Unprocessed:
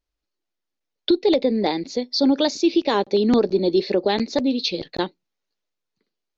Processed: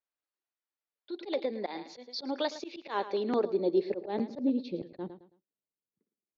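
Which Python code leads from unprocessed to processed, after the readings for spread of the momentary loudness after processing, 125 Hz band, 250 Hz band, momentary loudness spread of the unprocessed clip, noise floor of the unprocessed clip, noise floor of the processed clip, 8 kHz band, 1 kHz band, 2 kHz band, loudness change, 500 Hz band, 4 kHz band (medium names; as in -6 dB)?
14 LU, -14.0 dB, -13.5 dB, 8 LU, -82 dBFS, under -85 dBFS, no reading, -10.5 dB, -12.0 dB, -12.5 dB, -11.5 dB, -16.5 dB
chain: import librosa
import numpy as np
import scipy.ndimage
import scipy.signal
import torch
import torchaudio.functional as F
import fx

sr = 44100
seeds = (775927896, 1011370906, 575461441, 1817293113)

y = fx.echo_feedback(x, sr, ms=109, feedback_pct=29, wet_db=-15)
y = fx.filter_sweep_bandpass(y, sr, from_hz=1300.0, to_hz=210.0, start_s=3.0, end_s=4.88, q=0.72)
y = fx.auto_swell(y, sr, attack_ms=103.0)
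y = y * librosa.db_to_amplitude(-6.0)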